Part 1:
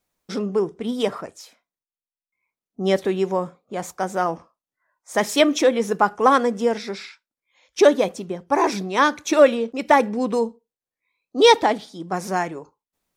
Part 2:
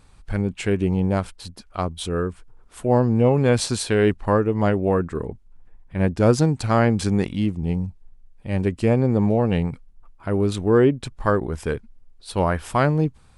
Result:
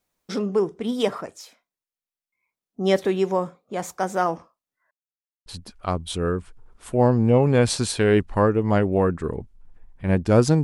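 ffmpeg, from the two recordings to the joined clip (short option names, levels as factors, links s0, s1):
-filter_complex "[0:a]apad=whole_dur=10.63,atrim=end=10.63,asplit=2[s0][s1];[s0]atrim=end=4.91,asetpts=PTS-STARTPTS,afade=t=out:st=4.906:d=0.004:c=hsin[s2];[s1]atrim=start=4.91:end=5.46,asetpts=PTS-STARTPTS,volume=0[s3];[1:a]atrim=start=1.37:end=6.54,asetpts=PTS-STARTPTS,afade=t=in:d=0.004:c=hsin[s4];[s2][s3][s4]concat=n=3:v=0:a=1"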